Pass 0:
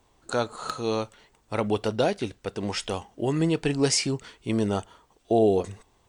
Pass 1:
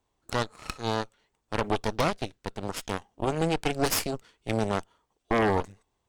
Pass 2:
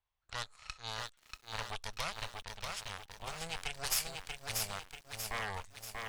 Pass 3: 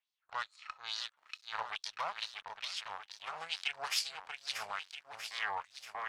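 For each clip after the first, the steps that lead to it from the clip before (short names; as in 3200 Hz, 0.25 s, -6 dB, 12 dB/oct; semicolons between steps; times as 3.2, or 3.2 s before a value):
added harmonics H 3 -27 dB, 5 -19 dB, 6 -8 dB, 7 -17 dB, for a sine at -9 dBFS; gain -6 dB
low-pass opened by the level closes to 3000 Hz, open at -25.5 dBFS; passive tone stack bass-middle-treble 10-0-10; lo-fi delay 0.637 s, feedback 55%, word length 9-bit, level -3.5 dB; gain -3.5 dB
LFO band-pass sine 2.3 Hz 850–4800 Hz; gain +8 dB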